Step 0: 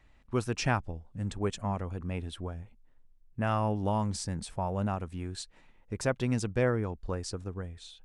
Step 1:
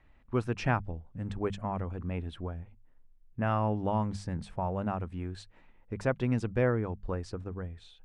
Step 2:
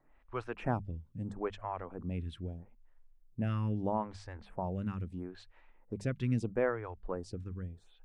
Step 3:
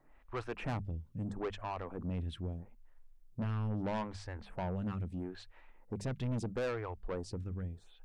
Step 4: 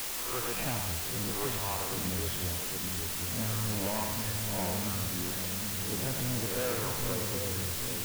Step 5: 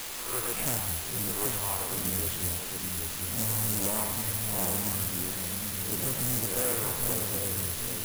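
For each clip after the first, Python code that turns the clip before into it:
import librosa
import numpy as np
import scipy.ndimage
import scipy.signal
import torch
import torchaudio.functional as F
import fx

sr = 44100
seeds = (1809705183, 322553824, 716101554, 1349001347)

y1 = fx.bass_treble(x, sr, bass_db=1, treble_db=-15)
y1 = fx.hum_notches(y1, sr, base_hz=50, count=4)
y2 = fx.stagger_phaser(y1, sr, hz=0.77)
y2 = y2 * 10.0 ** (-1.0 / 20.0)
y3 = 10.0 ** (-34.5 / 20.0) * np.tanh(y2 / 10.0 ** (-34.5 / 20.0))
y3 = y3 * 10.0 ** (3.0 / 20.0)
y4 = fx.spec_swells(y3, sr, rise_s=0.57)
y4 = fx.echo_split(y4, sr, split_hz=510.0, low_ms=788, high_ms=91, feedback_pct=52, wet_db=-4.0)
y4 = fx.quant_dither(y4, sr, seeds[0], bits=6, dither='triangular')
y5 = (np.kron(scipy.signal.resample_poly(y4, 1, 4), np.eye(4)[0]) * 4)[:len(y4)]
y5 = fx.doppler_dist(y5, sr, depth_ms=0.66)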